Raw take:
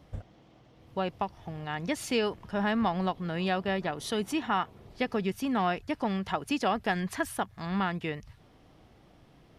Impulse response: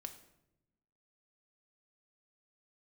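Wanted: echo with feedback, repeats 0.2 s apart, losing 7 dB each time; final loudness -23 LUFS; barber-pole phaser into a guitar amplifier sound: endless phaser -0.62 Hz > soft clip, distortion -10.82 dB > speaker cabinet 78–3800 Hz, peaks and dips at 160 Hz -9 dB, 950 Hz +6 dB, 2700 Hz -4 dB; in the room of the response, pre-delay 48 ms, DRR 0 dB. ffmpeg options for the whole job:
-filter_complex "[0:a]aecho=1:1:200|400|600|800|1000:0.447|0.201|0.0905|0.0407|0.0183,asplit=2[a][b];[1:a]atrim=start_sample=2205,adelay=48[c];[b][c]afir=irnorm=-1:irlink=0,volume=4.5dB[d];[a][d]amix=inputs=2:normalize=0,asplit=2[e][f];[f]afreqshift=-0.62[g];[e][g]amix=inputs=2:normalize=1,asoftclip=threshold=-28dB,highpass=78,equalizer=f=160:t=q:w=4:g=-9,equalizer=f=950:t=q:w=4:g=6,equalizer=f=2.7k:t=q:w=4:g=-4,lowpass=f=3.8k:w=0.5412,lowpass=f=3.8k:w=1.3066,volume=11dB"

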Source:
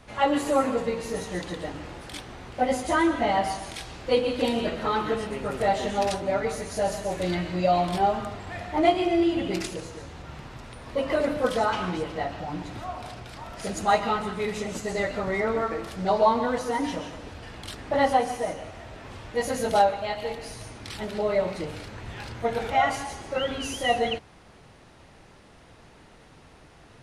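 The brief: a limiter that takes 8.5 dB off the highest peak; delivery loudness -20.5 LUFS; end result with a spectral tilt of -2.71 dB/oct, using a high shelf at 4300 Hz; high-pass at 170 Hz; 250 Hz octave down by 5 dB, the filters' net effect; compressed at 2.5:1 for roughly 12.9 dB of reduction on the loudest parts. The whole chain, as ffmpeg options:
-af "highpass=170,equalizer=f=250:t=o:g=-6,highshelf=f=4.3k:g=8,acompressor=threshold=-36dB:ratio=2.5,volume=17.5dB,alimiter=limit=-10.5dB:level=0:latency=1"

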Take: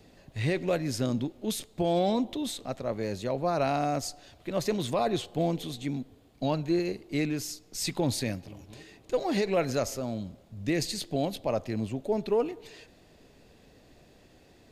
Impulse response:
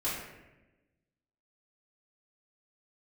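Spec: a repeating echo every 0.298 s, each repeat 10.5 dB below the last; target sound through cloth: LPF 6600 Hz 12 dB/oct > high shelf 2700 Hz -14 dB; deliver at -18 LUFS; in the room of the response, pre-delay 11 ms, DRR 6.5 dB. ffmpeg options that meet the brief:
-filter_complex "[0:a]aecho=1:1:298|596|894:0.299|0.0896|0.0269,asplit=2[a][b];[1:a]atrim=start_sample=2205,adelay=11[c];[b][c]afir=irnorm=-1:irlink=0,volume=-13dB[d];[a][d]amix=inputs=2:normalize=0,lowpass=6.6k,highshelf=f=2.7k:g=-14,volume=12dB"

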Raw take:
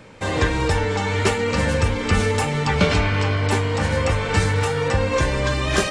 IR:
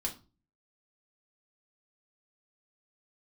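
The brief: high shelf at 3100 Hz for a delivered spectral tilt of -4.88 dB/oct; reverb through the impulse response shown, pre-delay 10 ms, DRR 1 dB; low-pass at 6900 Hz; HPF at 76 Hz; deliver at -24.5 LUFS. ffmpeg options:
-filter_complex "[0:a]highpass=76,lowpass=6.9k,highshelf=f=3.1k:g=7.5,asplit=2[a][b];[1:a]atrim=start_sample=2205,adelay=10[c];[b][c]afir=irnorm=-1:irlink=0,volume=-3dB[d];[a][d]amix=inputs=2:normalize=0,volume=-8dB"

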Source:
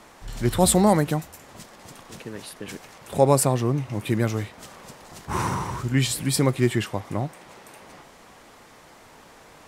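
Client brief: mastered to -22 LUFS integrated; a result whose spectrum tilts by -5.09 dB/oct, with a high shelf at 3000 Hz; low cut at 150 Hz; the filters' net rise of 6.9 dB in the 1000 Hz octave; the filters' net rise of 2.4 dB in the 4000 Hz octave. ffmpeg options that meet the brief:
-af "highpass=150,equalizer=f=1k:t=o:g=9,highshelf=f=3k:g=-8,equalizer=f=4k:t=o:g=8.5"

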